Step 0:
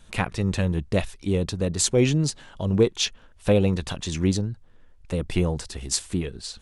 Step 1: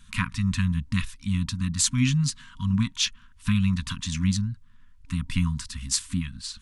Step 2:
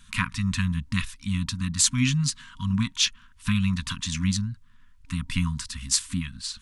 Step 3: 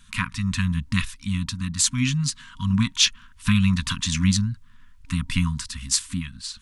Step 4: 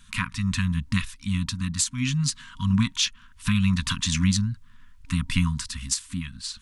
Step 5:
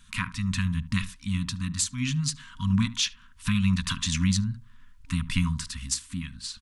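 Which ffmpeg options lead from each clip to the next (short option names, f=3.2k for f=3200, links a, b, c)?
-af "afftfilt=real='re*(1-between(b*sr/4096,270,940))':imag='im*(1-between(b*sr/4096,270,940))':win_size=4096:overlap=0.75"
-af "lowshelf=f=370:g=-4.5,volume=2.5dB"
-af "dynaudnorm=f=110:g=13:m=5dB"
-af "alimiter=limit=-12dB:level=0:latency=1:release=376"
-filter_complex "[0:a]asplit=2[a][b];[b]adelay=73,lowpass=f=900:p=1,volume=-12.5dB,asplit=2[c][d];[d]adelay=73,lowpass=f=900:p=1,volume=0.18[e];[a][c][e]amix=inputs=3:normalize=0,volume=-2.5dB"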